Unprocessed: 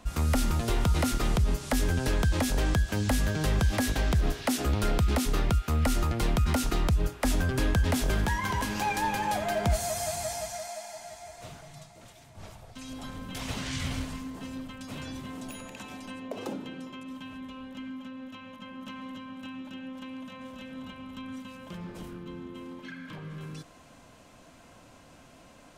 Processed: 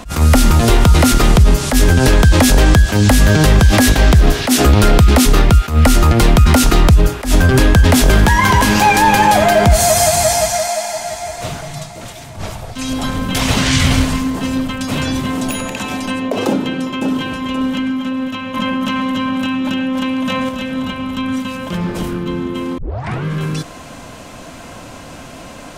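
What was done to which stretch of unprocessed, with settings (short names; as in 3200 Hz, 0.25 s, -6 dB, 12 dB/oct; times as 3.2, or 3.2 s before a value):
16.48–17.24 echo throw 0.53 s, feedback 30%, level -4.5 dB
18.54–20.49 fast leveller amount 100%
22.78 tape start 0.46 s
whole clip: maximiser +21.5 dB; attack slew limiter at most 160 dB/s; gain -1 dB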